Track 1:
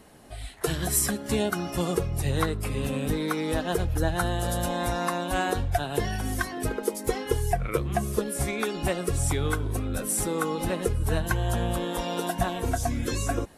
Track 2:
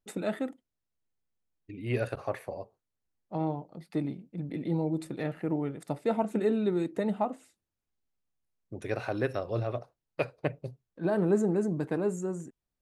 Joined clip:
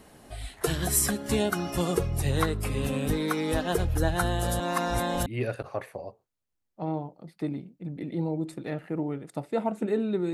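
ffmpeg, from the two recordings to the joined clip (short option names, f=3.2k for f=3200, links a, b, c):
-filter_complex "[0:a]apad=whole_dur=10.33,atrim=end=10.33,asplit=2[a][b];[a]atrim=end=4.602[c];[b]atrim=start=4.598:end=5.262,asetpts=PTS-STARTPTS,areverse[d];[1:a]atrim=start=1.788:end=6.86[e];[c][d]acrossfade=d=0.004:c1=hsin:c2=hsin[f];[f][e]acrossfade=d=0.004:c1=hsin:c2=hsin"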